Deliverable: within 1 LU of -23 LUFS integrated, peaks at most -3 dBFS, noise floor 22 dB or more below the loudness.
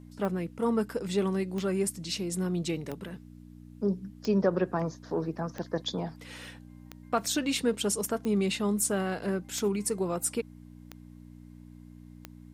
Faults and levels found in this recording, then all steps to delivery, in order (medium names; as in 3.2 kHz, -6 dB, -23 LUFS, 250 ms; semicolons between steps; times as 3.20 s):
clicks found 10; hum 60 Hz; highest harmonic 300 Hz; hum level -48 dBFS; loudness -30.5 LUFS; peak level -14.0 dBFS; loudness target -23.0 LUFS
-> de-click; de-hum 60 Hz, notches 5; trim +7.5 dB